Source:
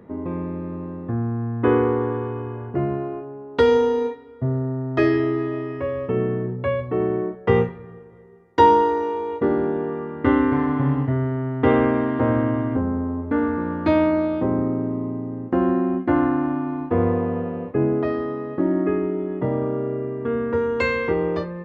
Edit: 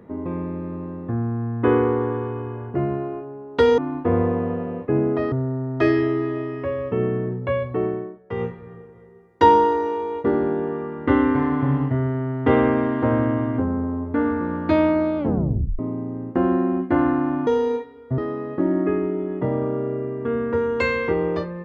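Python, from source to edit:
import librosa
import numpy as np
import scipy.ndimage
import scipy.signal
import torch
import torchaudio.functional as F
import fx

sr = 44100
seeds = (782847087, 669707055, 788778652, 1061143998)

y = fx.edit(x, sr, fx.swap(start_s=3.78, length_s=0.71, other_s=16.64, other_length_s=1.54),
    fx.fade_down_up(start_s=6.94, length_s=0.93, db=-11.5, fade_s=0.35),
    fx.tape_stop(start_s=14.35, length_s=0.61), tone=tone)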